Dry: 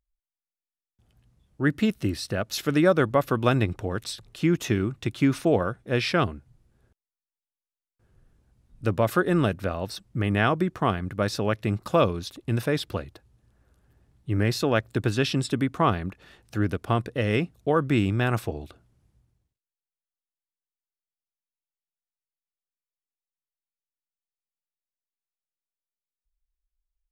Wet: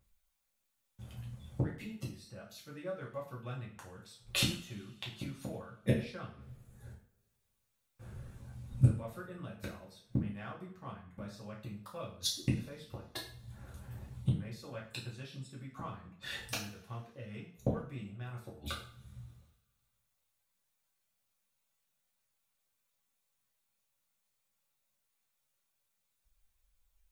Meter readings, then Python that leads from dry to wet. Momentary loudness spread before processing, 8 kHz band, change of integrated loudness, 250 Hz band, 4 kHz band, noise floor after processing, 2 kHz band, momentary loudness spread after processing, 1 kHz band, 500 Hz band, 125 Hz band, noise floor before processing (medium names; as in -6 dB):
9 LU, -5.5 dB, -14.0 dB, -16.0 dB, -7.0 dB, -81 dBFS, -16.0 dB, 18 LU, -20.5 dB, -19.0 dB, -10.0 dB, under -85 dBFS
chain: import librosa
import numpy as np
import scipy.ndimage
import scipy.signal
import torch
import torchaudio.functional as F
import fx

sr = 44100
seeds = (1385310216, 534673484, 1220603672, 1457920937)

p1 = fx.graphic_eq_31(x, sr, hz=(200, 315, 5000), db=(5, -9, -3))
p2 = fx.dereverb_blind(p1, sr, rt60_s=0.71)
p3 = 10.0 ** (-25.5 / 20.0) * np.tanh(p2 / 10.0 ** (-25.5 / 20.0))
p4 = p2 + (p3 * librosa.db_to_amplitude(-11.0))
p5 = fx.gate_flip(p4, sr, shuts_db=-27.0, range_db=-36)
p6 = fx.rev_double_slope(p5, sr, seeds[0], early_s=0.43, late_s=2.1, knee_db=-26, drr_db=-5.5)
y = p6 * librosa.db_to_amplitude(6.5)